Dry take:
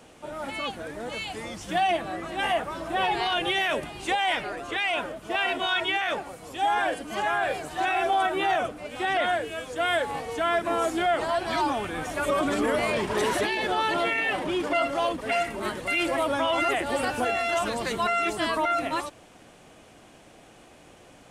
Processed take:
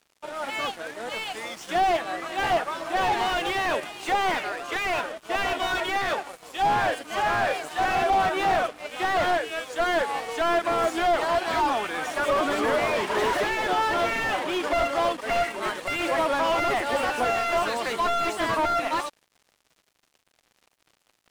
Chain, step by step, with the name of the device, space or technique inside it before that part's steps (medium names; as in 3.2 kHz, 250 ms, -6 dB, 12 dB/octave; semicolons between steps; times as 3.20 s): frequency weighting A; early transistor amplifier (crossover distortion -48 dBFS; slew-rate limiter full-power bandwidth 50 Hz); trim +5.5 dB